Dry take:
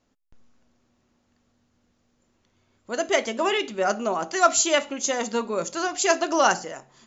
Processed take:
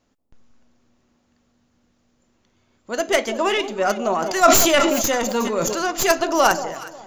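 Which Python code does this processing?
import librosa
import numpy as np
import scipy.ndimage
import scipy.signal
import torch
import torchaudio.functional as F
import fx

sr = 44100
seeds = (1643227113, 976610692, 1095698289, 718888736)

y = fx.tracing_dist(x, sr, depth_ms=0.083)
y = fx.echo_alternate(y, sr, ms=182, hz=950.0, feedback_pct=50, wet_db=-11.0)
y = fx.sustainer(y, sr, db_per_s=30.0, at=(4.05, 5.9), fade=0.02)
y = y * 10.0 ** (3.0 / 20.0)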